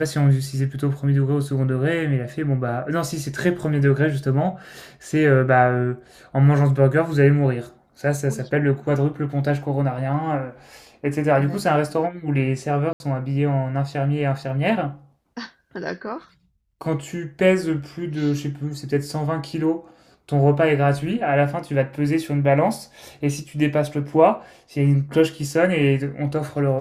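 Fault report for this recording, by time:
12.93–13.00 s: dropout 71 ms

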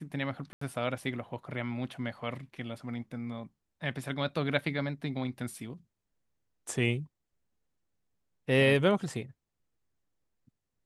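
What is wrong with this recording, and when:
0.53–0.61 s: dropout 84 ms

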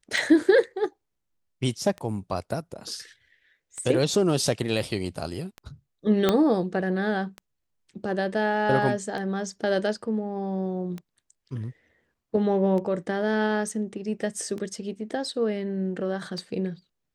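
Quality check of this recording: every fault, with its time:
tick 33 1/3 rpm
6.29 s: pop -7 dBFS

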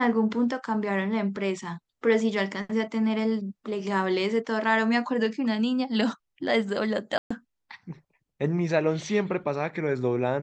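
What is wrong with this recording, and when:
7.18–7.30 s: dropout 125 ms

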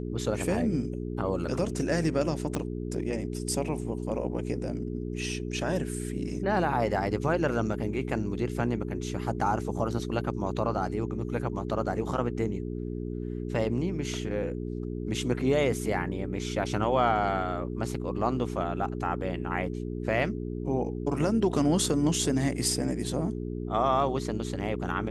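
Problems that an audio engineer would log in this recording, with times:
hum 60 Hz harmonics 7 -34 dBFS
2.55 s: pop -16 dBFS

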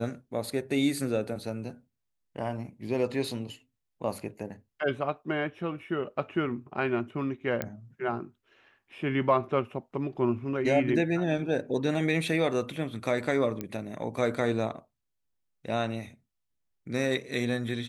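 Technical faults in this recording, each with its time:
7.62 s: pop -15 dBFS
13.61 s: pop -19 dBFS

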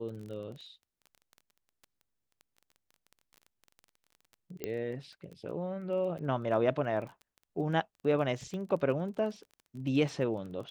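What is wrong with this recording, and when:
crackle 17 per s -41 dBFS
4.64 s: pop -21 dBFS
8.54 s: pop -30 dBFS

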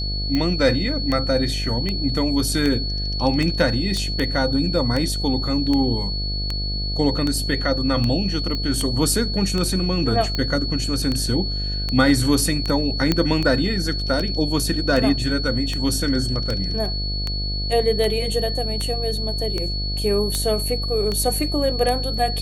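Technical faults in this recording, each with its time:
buzz 50 Hz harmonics 15 -26 dBFS
tick 78 rpm -11 dBFS
whine 4.4 kHz -27 dBFS
3.97 s: pop -15 dBFS
8.55 s: pop -15 dBFS
13.12 s: pop -5 dBFS

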